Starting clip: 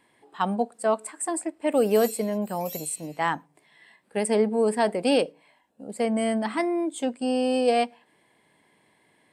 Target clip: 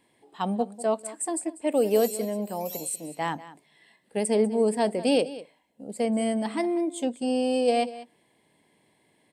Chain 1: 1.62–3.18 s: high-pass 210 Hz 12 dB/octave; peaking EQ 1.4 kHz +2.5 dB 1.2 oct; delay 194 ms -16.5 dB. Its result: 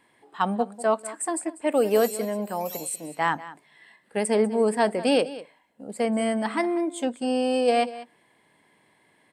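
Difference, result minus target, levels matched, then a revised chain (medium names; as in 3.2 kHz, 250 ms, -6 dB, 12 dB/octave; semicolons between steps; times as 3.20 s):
1 kHz band +3.0 dB
1.62–3.18 s: high-pass 210 Hz 12 dB/octave; peaking EQ 1.4 kHz -8.5 dB 1.2 oct; delay 194 ms -16.5 dB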